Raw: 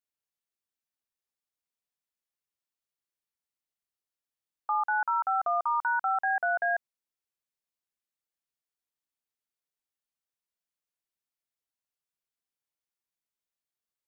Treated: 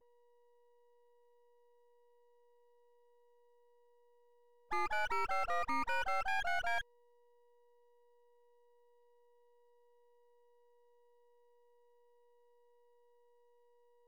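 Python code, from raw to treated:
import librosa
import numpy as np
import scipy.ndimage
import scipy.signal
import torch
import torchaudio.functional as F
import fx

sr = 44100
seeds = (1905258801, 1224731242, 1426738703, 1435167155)

y = x + 10.0 ** (-58.0 / 20.0) * np.sin(2.0 * np.pi * 480.0 * np.arange(len(x)) / sr)
y = fx.dispersion(y, sr, late='highs', ms=65.0, hz=1100.0)
y = np.maximum(y, 0.0)
y = y * 10.0 ** (-4.0 / 20.0)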